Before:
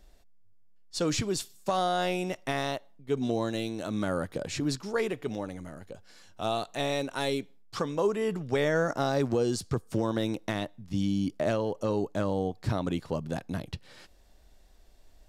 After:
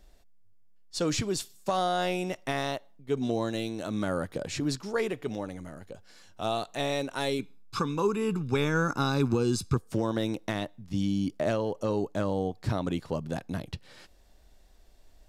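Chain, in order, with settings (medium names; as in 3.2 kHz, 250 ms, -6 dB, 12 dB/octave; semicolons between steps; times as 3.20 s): 7.39–9.77 s: comb 0.8 ms, depth 80%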